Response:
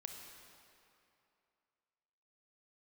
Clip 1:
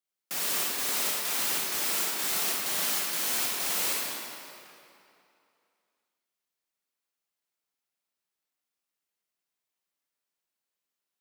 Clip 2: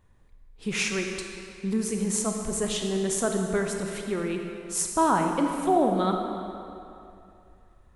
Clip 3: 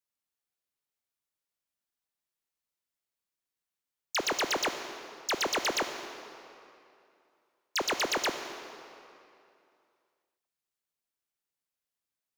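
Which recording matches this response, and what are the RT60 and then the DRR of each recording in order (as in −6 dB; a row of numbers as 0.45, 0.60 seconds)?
2; 2.7, 2.7, 2.7 seconds; −4.5, 3.0, 7.0 decibels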